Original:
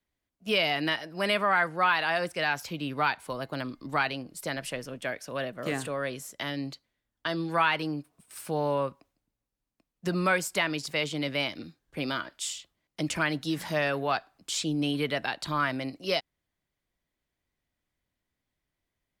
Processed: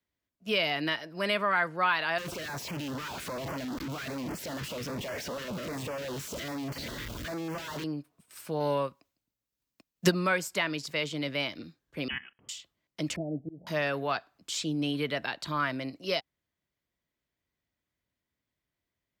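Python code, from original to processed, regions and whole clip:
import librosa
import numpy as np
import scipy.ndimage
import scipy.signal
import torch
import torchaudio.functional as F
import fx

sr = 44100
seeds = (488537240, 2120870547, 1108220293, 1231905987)

y = fx.chain(x, sr, fx.clip_1bit(),
    fx.high_shelf(hz=5300.0, db=-8.5),
    fx.filter_held_notch(hz=10.0, low_hz=700.0, high_hz=3800.0), at=(2.18, 7.84))
y = fx.chain(y, sr, fx.high_shelf(hz=2500.0, db=8.5),
    fx.transient(attack_db=10, sustain_db=-4), at=(8.6, 10.12))
y = fx.chain(y, sr, fx.level_steps(step_db=16),
    fx.freq_invert(carrier_hz=3200), at=(12.08, 12.49))
y = fx.chain(y, sr, fx.steep_lowpass(hz=760.0, slope=96),
    fx.auto_swell(attack_ms=236.0), at=(13.16, 13.67))
y = scipy.signal.sosfilt(scipy.signal.butter(2, 55.0, 'highpass', fs=sr, output='sos'), y)
y = fx.peak_eq(y, sr, hz=9600.0, db=-7.0, octaves=0.33)
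y = fx.notch(y, sr, hz=780.0, q=12.0)
y = y * 10.0 ** (-2.0 / 20.0)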